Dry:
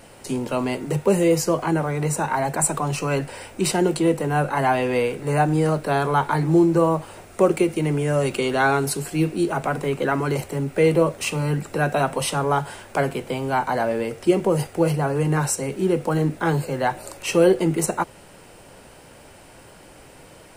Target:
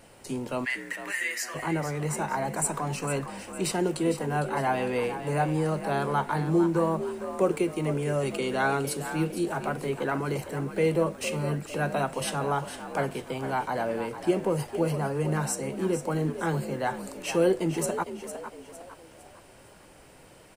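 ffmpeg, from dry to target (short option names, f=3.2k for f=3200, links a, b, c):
-filter_complex "[0:a]asplit=3[a][b][c];[a]afade=t=out:st=0.64:d=0.02[d];[b]highpass=f=1.8k:t=q:w=11,afade=t=in:st=0.64:d=0.02,afade=t=out:st=1.54:d=0.02[e];[c]afade=t=in:st=1.54:d=0.02[f];[d][e][f]amix=inputs=3:normalize=0,asplit=2[g][h];[h]asplit=4[i][j][k][l];[i]adelay=456,afreqshift=55,volume=-10.5dB[m];[j]adelay=912,afreqshift=110,volume=-18.5dB[n];[k]adelay=1368,afreqshift=165,volume=-26.4dB[o];[l]adelay=1824,afreqshift=220,volume=-34.4dB[p];[m][n][o][p]amix=inputs=4:normalize=0[q];[g][q]amix=inputs=2:normalize=0,volume=-7dB"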